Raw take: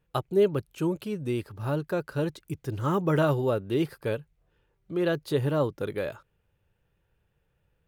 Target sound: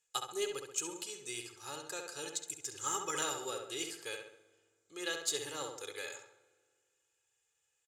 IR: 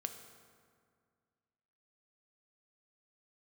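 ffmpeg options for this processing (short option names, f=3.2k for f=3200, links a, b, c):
-filter_complex "[0:a]lowpass=f=7.2k:t=q:w=6.4,aderivative,aecho=1:1:2.4:0.68,aeval=exprs='0.0708*(cos(1*acos(clip(val(0)/0.0708,-1,1)))-cos(1*PI/2))+0.00224*(cos(7*acos(clip(val(0)/0.0708,-1,1)))-cos(7*PI/2))':c=same,asplit=2[a][b];[b]adelay=67,lowpass=f=2.8k:p=1,volume=-4dB,asplit=2[c][d];[d]adelay=67,lowpass=f=2.8k:p=1,volume=0.5,asplit=2[e][f];[f]adelay=67,lowpass=f=2.8k:p=1,volume=0.5,asplit=2[g][h];[h]adelay=67,lowpass=f=2.8k:p=1,volume=0.5,asplit=2[i][j];[j]adelay=67,lowpass=f=2.8k:p=1,volume=0.5,asplit=2[k][l];[l]adelay=67,lowpass=f=2.8k:p=1,volume=0.5[m];[a][c][e][g][i][k][m]amix=inputs=7:normalize=0,asplit=2[n][o];[1:a]atrim=start_sample=2205[p];[o][p]afir=irnorm=-1:irlink=0,volume=-4.5dB[q];[n][q]amix=inputs=2:normalize=0,volume=2.5dB"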